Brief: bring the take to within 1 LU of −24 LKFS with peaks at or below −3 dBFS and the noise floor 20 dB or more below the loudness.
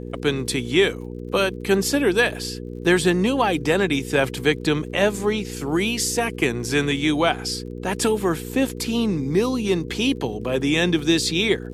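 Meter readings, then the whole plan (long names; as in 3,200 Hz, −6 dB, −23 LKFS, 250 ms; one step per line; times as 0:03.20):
crackle rate 43 per second; mains hum 60 Hz; hum harmonics up to 480 Hz; level of the hum −31 dBFS; integrated loudness −21.5 LKFS; sample peak −4.0 dBFS; target loudness −24.0 LKFS
→ click removal
hum removal 60 Hz, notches 8
level −2.5 dB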